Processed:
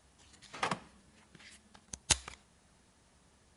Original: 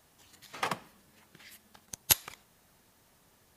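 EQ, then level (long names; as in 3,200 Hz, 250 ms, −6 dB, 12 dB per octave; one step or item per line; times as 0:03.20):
linear-phase brick-wall low-pass 11,000 Hz
parametric band 65 Hz +14 dB 0.37 octaves
parametric band 190 Hz +3.5 dB 0.77 octaves
−2.0 dB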